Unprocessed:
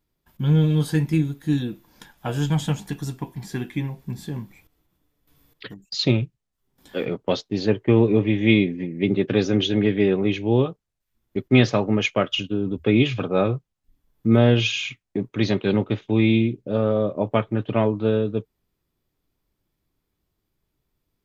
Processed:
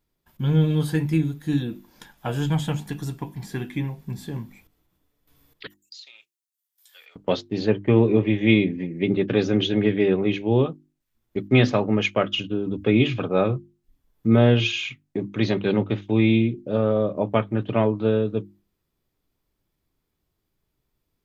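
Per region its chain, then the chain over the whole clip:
5.67–7.16 s: high-pass 890 Hz + compression, threshold -33 dBFS + differentiator
whole clip: hum notches 50/100/150/200/250/300/350 Hz; dynamic bell 6 kHz, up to -5 dB, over -47 dBFS, Q 1.2

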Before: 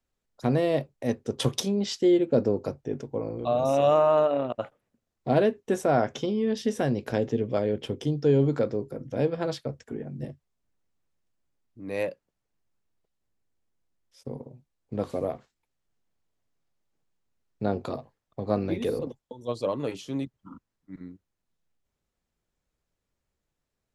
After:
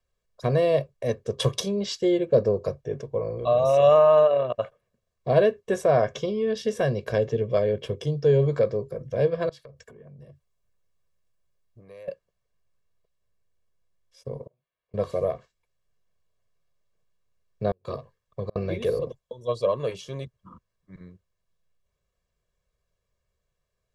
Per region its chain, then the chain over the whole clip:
9.49–12.08 s: treble shelf 10 kHz +6.5 dB + compression 10:1, threshold -44 dBFS + transformer saturation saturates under 320 Hz
14.47–14.94 s: compression 4:1, threshold -56 dBFS + high-pass 1.5 kHz 6 dB/octave + decimation joined by straight lines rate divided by 6×
17.71–18.56 s: peaking EQ 670 Hz -7 dB 0.36 oct + inverted gate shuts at -20 dBFS, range -39 dB
whole clip: treble shelf 9.7 kHz -7.5 dB; comb 1.8 ms, depth 85%

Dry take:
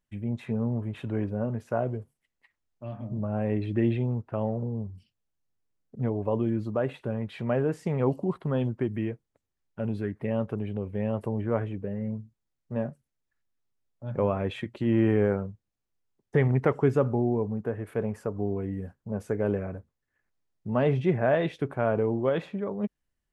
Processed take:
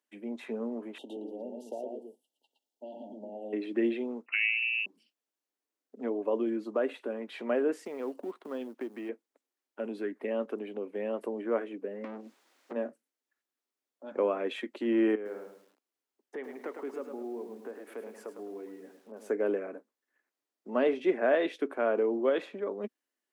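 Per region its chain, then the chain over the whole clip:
0.98–3.53 s: compression 2.5:1, threshold -35 dBFS + brick-wall FIR band-stop 940–2700 Hz + delay 116 ms -4 dB
4.26–4.86 s: frequency inversion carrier 2.8 kHz + tape noise reduction on one side only decoder only
7.85–9.09 s: companding laws mixed up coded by A + compression 2:1, threshold -34 dBFS
12.04–12.73 s: compression, threshold -42 dBFS + overdrive pedal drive 36 dB, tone 2.8 kHz, clips at -26 dBFS
15.15–19.30 s: compression 2:1, threshold -43 dBFS + bit-crushed delay 105 ms, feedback 35%, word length 10-bit, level -7 dB
whole clip: steep high-pass 250 Hz 48 dB/octave; dynamic bell 850 Hz, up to -5 dB, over -46 dBFS, Q 2.1

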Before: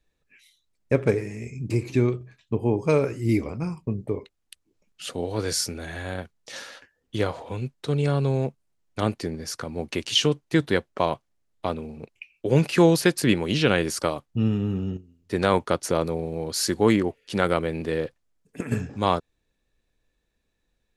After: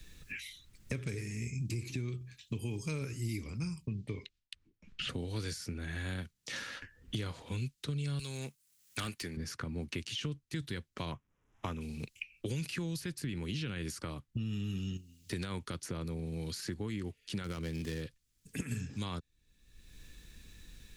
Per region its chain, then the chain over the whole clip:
3.87–5.09 s: low-pass 3.9 kHz + gate with hold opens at -58 dBFS, closes at -68 dBFS
8.19–9.37 s: tilt EQ +4.5 dB/octave + hard clipper -22 dBFS
11.12–11.81 s: CVSD coder 64 kbps + boxcar filter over 10 samples + peaking EQ 1 kHz +5.5 dB 0.92 oct
17.44–18.02 s: median filter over 15 samples + tape noise reduction on one side only encoder only
whole clip: amplifier tone stack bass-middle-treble 6-0-2; peak limiter -35 dBFS; three bands compressed up and down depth 100%; trim +8 dB

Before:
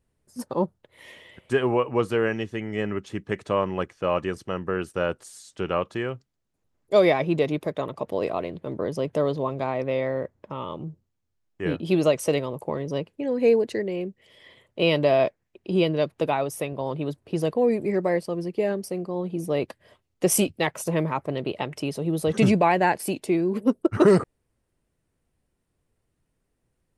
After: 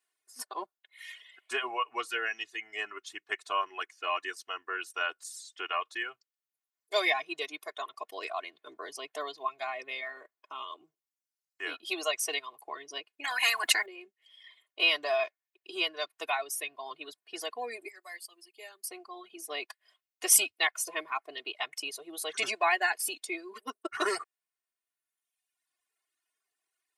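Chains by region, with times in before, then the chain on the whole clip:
13.24–13.86 s: peaking EQ 5 kHz -12.5 dB 1.6 oct + spectrum-flattening compressor 10:1
17.88–18.87 s: pre-emphasis filter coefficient 0.8 + band-stop 5.8 kHz, Q 7.2
whole clip: reverb removal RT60 1.4 s; high-pass 1.3 kHz 12 dB/octave; comb 2.8 ms, depth 92%

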